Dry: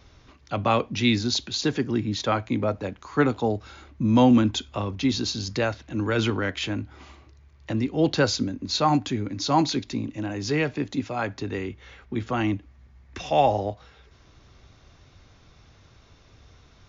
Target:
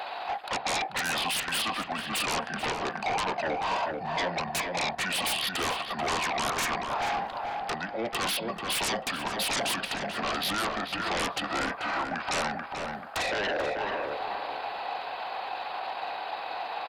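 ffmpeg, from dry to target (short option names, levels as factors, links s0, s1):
-filter_complex "[0:a]lowpass=f=3200:p=1,aemphasis=mode=production:type=50kf,areverse,acompressor=threshold=0.0316:ratio=6,areverse,alimiter=level_in=1.68:limit=0.0631:level=0:latency=1:release=447,volume=0.596,asetrate=31183,aresample=44100,atempo=1.41421,highpass=f=740:t=q:w=4.9,aeval=exprs='0.075*sin(PI/2*8.91*val(0)/0.075)':c=same,asplit=2[s0][s1];[s1]adelay=437,lowpass=f=1900:p=1,volume=0.708,asplit=2[s2][s3];[s3]adelay=437,lowpass=f=1900:p=1,volume=0.36,asplit=2[s4][s5];[s5]adelay=437,lowpass=f=1900:p=1,volume=0.36,asplit=2[s6][s7];[s7]adelay=437,lowpass=f=1900:p=1,volume=0.36,asplit=2[s8][s9];[s9]adelay=437,lowpass=f=1900:p=1,volume=0.36[s10];[s2][s4][s6][s8][s10]amix=inputs=5:normalize=0[s11];[s0][s11]amix=inputs=2:normalize=0,volume=0.668"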